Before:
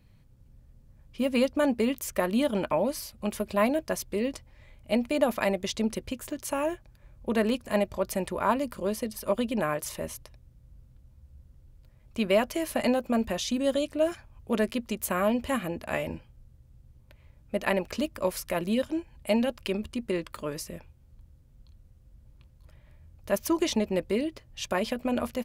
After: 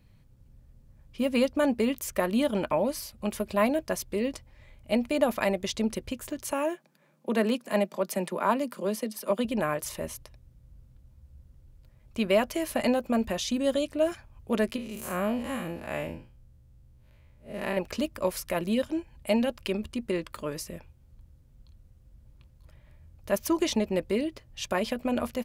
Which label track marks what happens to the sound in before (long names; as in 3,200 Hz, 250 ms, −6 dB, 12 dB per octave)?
6.520000	9.450000	Butterworth high-pass 150 Hz 96 dB per octave
14.760000	17.770000	spectrum smeared in time width 123 ms